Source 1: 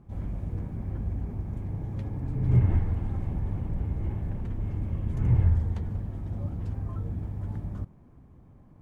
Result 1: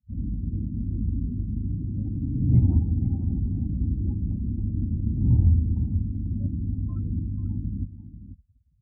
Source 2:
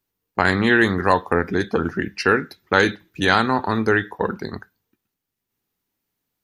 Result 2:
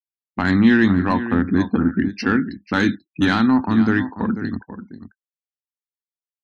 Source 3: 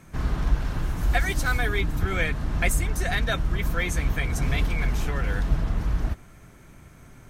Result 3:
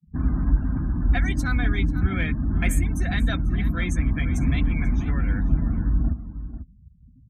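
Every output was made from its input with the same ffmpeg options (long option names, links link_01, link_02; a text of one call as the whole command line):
ffmpeg -i in.wav -filter_complex "[0:a]afftfilt=real='re*gte(hypot(re,im),0.0112)':imag='im*gte(hypot(re,im),0.0112)':win_size=1024:overlap=0.75,equalizer=frequency=130:width=1.2:gain=-5,afftdn=noise_reduction=33:noise_floor=-38,highpass=frequency=43:width=0.5412,highpass=frequency=43:width=1.3066,asplit=2[link_01][link_02];[link_02]adelay=489.8,volume=-12dB,highshelf=frequency=4000:gain=-11[link_03];[link_01][link_03]amix=inputs=2:normalize=0,acontrast=23,lowshelf=frequency=340:width_type=q:width=3:gain=8,volume=-7.5dB" out.wav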